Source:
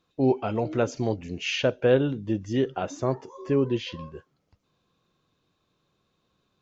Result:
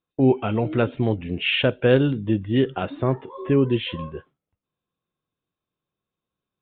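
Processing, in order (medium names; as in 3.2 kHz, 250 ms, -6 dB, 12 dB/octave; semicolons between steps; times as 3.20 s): dynamic bell 650 Hz, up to -6 dB, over -36 dBFS, Q 0.79; resampled via 8 kHz; gate with hold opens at -43 dBFS; trim +7 dB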